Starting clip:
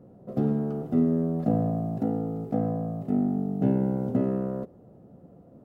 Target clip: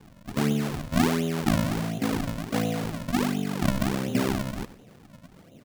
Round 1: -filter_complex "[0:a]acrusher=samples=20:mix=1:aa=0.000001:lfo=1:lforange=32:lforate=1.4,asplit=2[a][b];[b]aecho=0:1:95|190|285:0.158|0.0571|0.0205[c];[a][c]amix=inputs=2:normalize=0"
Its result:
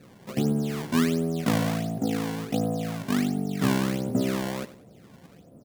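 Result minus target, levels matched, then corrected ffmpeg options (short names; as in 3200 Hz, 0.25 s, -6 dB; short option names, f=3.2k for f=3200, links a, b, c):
decimation with a swept rate: distortion -11 dB
-filter_complex "[0:a]acrusher=samples=63:mix=1:aa=0.000001:lfo=1:lforange=101:lforate=1.4,asplit=2[a][b];[b]aecho=0:1:95|190|285:0.158|0.0571|0.0205[c];[a][c]amix=inputs=2:normalize=0"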